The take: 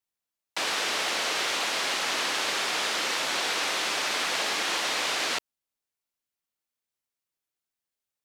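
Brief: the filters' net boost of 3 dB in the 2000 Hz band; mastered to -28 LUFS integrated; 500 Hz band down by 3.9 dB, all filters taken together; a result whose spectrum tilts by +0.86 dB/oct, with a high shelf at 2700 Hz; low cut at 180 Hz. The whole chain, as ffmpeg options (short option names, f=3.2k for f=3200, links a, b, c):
-af "highpass=180,equalizer=f=500:t=o:g=-5,equalizer=f=2k:t=o:g=7,highshelf=f=2.7k:g=-7,volume=-1.5dB"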